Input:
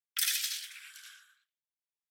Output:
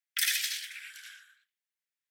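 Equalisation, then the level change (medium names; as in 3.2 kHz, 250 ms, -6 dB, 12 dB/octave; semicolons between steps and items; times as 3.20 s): resonant high-pass 1.8 kHz, resonance Q 2.4; 0.0 dB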